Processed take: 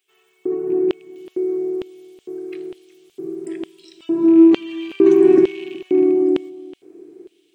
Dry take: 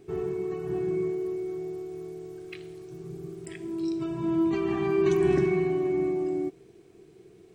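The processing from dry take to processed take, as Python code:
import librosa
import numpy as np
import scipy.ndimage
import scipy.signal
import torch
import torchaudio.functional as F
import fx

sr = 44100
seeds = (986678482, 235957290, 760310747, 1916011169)

y = fx.rattle_buzz(x, sr, strikes_db=-30.0, level_db=-33.0)
y = fx.peak_eq(y, sr, hz=4000.0, db=fx.steps((0.0, -15.0), (1.16, -5.5)), octaves=2.3)
y = fx.filter_lfo_highpass(y, sr, shape='square', hz=1.1, low_hz=310.0, high_hz=3100.0, q=4.7)
y = y + 10.0 ** (-19.5 / 20.0) * np.pad(y, (int(371 * sr / 1000.0), 0))[:len(y)]
y = y * librosa.db_to_amplitude(3.0)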